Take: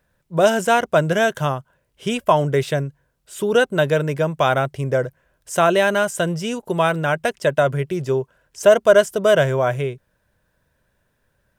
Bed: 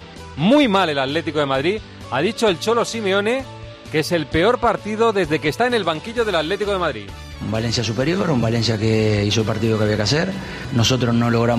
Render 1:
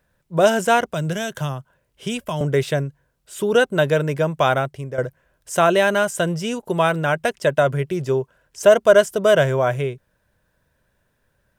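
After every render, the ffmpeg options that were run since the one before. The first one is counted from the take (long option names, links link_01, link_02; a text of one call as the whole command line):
ffmpeg -i in.wav -filter_complex "[0:a]asettb=1/sr,asplit=3[link_01][link_02][link_03];[link_01]atrim=end=0.914[link_04];[link_02]atrim=start=0.91:end=2.41,asetpts=PTS-STARTPTS,afade=type=in:duration=0.004:curve=qsin,afade=type=out:start_time=1.496:duration=0.004:curve=qsin,acrossover=split=210|3000[link_05][link_06][link_07];[link_06]acompressor=threshold=-28dB:ratio=3:attack=3.2:release=140:knee=2.83:detection=peak[link_08];[link_05][link_08][link_07]amix=inputs=3:normalize=0[link_09];[link_03]atrim=start=2.406[link_10];[link_04][link_09]acrossfade=duration=0.004:curve1=hsin:curve2=qsin[link_11];[link_11][link_10]acrossfade=duration=0.004:curve1=qsin:curve2=hsin,asplit=2[link_12][link_13];[link_12]atrim=end=4.98,asetpts=PTS-STARTPTS,afade=type=out:start_time=4.5:duration=0.48:silence=0.251189[link_14];[link_13]atrim=start=4.98,asetpts=PTS-STARTPTS,afade=type=in:duration=0.004:curve=hsin:silence=0.251189[link_15];[link_14][link_15]concat=n=2:v=0:a=1" out.wav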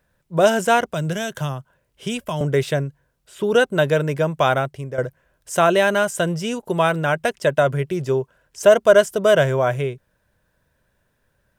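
ffmpeg -i in.wav -filter_complex "[0:a]asettb=1/sr,asplit=3[link_01][link_02][link_03];[link_01]atrim=end=2.774[link_04];[link_02]atrim=start=2.77:end=3.44,asetpts=PTS-STARTPTS,afade=type=in:duration=0.004:curve=qsin,afade=type=out:start_time=0.666:duration=0.004:curve=qsin,acrossover=split=4100[link_05][link_06];[link_06]acompressor=threshold=-46dB:ratio=4:attack=1:release=60[link_07];[link_05][link_07]amix=inputs=2:normalize=0[link_08];[link_03]atrim=start=3.436[link_09];[link_04][link_08]acrossfade=duration=0.004:curve1=hsin:curve2=qsin[link_10];[link_10][link_09]acrossfade=duration=0.004:curve1=qsin:curve2=hsin" out.wav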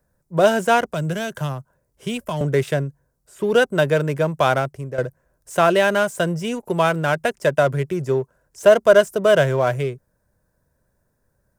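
ffmpeg -i in.wav -filter_complex "[0:a]acrossover=split=270|4500[link_01][link_02][link_03];[link_02]adynamicsmooth=sensitivity=7:basefreq=1400[link_04];[link_03]asoftclip=type=tanh:threshold=-33dB[link_05];[link_01][link_04][link_05]amix=inputs=3:normalize=0" out.wav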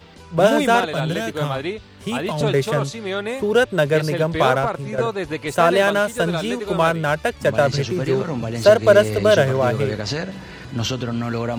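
ffmpeg -i in.wav -i bed.wav -filter_complex "[1:a]volume=-7dB[link_01];[0:a][link_01]amix=inputs=2:normalize=0" out.wav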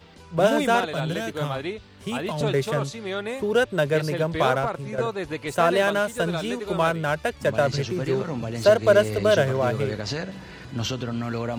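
ffmpeg -i in.wav -af "volume=-4.5dB" out.wav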